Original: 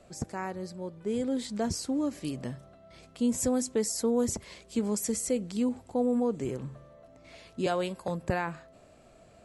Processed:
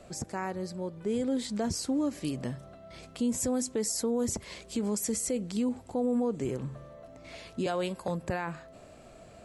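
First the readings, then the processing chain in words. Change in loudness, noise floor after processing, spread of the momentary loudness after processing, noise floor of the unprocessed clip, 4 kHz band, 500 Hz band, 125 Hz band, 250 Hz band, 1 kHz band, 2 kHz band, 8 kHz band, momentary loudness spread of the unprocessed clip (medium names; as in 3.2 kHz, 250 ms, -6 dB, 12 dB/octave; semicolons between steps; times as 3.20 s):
-1.0 dB, -52 dBFS, 17 LU, -57 dBFS, +1.0 dB, -1.5 dB, 0.0 dB, -1.0 dB, -1.5 dB, -1.0 dB, +0.5 dB, 11 LU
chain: in parallel at 0 dB: compression, threshold -41 dBFS, peak gain reduction 17 dB; on the sum: peak limiter -21 dBFS, peak gain reduction 5 dB; trim -1 dB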